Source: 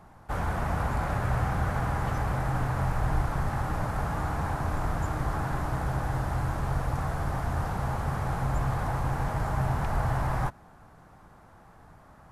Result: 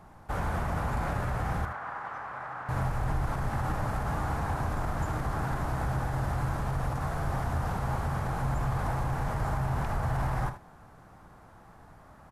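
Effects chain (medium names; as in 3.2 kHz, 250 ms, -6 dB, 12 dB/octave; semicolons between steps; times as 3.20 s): peak limiter -22 dBFS, peak gain reduction 5.5 dB; 1.65–2.69 s: band-pass filter 1.3 kHz, Q 1.3; early reflections 52 ms -15.5 dB, 77 ms -11.5 dB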